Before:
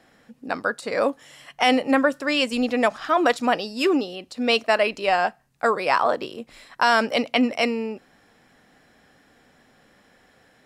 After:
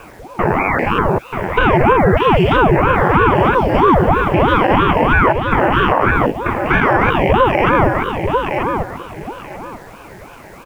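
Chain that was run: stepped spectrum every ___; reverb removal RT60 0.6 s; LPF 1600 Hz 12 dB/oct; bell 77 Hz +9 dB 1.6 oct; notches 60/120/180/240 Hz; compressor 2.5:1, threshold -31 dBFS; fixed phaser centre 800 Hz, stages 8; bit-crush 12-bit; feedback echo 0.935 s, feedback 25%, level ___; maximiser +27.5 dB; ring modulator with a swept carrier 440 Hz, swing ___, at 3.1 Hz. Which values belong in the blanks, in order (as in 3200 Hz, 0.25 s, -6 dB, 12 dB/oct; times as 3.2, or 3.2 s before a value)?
0.2 s, -6.5 dB, 80%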